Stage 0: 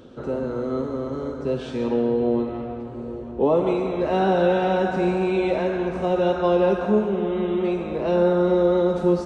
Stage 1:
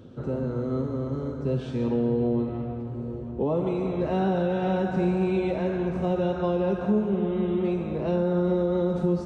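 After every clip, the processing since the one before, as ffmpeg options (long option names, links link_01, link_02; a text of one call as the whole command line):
ffmpeg -i in.wav -af "alimiter=limit=-13dB:level=0:latency=1:release=150,equalizer=frequency=120:width_type=o:width=1.8:gain=13,volume=-6.5dB" out.wav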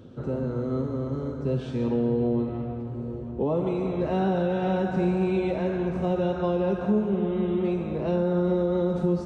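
ffmpeg -i in.wav -af anull out.wav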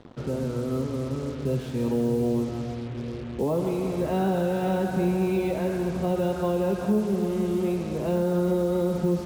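ffmpeg -i in.wav -af "acrusher=bits=6:mix=0:aa=0.5" out.wav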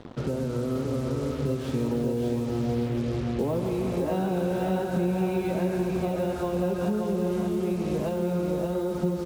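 ffmpeg -i in.wav -af "acompressor=threshold=-30dB:ratio=5,aecho=1:1:581:0.596,volume=4.5dB" out.wav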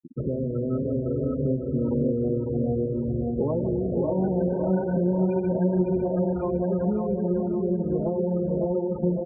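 ffmpeg -i in.wav -af "bandreject=frequency=740:width=17,afftfilt=real='re*gte(hypot(re,im),0.0501)':imag='im*gte(hypot(re,im),0.0501)':win_size=1024:overlap=0.75,aecho=1:1:554|1108|1662|2216|2770:0.501|0.216|0.0927|0.0398|0.0171,volume=1.5dB" out.wav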